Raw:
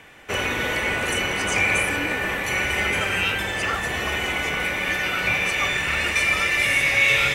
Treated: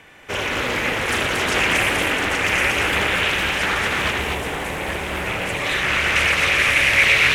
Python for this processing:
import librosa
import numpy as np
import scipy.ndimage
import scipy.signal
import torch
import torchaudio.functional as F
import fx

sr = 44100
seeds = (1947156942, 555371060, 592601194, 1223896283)

y = x + 10.0 ** (-4.5 / 20.0) * np.pad(x, (int(829 * sr / 1000.0), 0))[:len(x)]
y = fx.spec_box(y, sr, start_s=4.12, length_s=1.54, low_hz=1100.0, high_hz=7100.0, gain_db=-7)
y = fx.echo_multitap(y, sr, ms=(79, 119, 229), db=(-8.0, -10.5, -3.0))
y = fx.doppler_dist(y, sr, depth_ms=0.6)